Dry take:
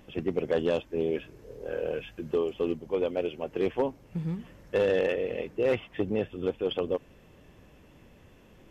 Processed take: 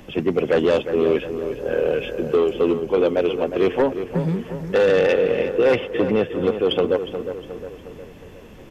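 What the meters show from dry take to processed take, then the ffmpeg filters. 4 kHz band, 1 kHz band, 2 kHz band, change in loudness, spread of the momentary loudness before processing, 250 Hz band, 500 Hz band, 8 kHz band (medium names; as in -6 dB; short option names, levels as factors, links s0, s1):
+10.5 dB, +11.0 dB, +10.5 dB, +9.5 dB, 8 LU, +10.0 dB, +10.0 dB, no reading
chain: -filter_complex "[0:a]acrossover=split=130|800[s0][s1][s2];[s0]acompressor=threshold=0.002:ratio=6[s3];[s3][s1][s2]amix=inputs=3:normalize=0,aeval=exprs='0.2*sin(PI/2*1.78*val(0)/0.2)':c=same,asplit=2[s4][s5];[s5]adelay=359,lowpass=f=2400:p=1,volume=0.355,asplit=2[s6][s7];[s7]adelay=359,lowpass=f=2400:p=1,volume=0.53,asplit=2[s8][s9];[s9]adelay=359,lowpass=f=2400:p=1,volume=0.53,asplit=2[s10][s11];[s11]adelay=359,lowpass=f=2400:p=1,volume=0.53,asplit=2[s12][s13];[s13]adelay=359,lowpass=f=2400:p=1,volume=0.53,asplit=2[s14][s15];[s15]adelay=359,lowpass=f=2400:p=1,volume=0.53[s16];[s4][s6][s8][s10][s12][s14][s16]amix=inputs=7:normalize=0,volume=1.33"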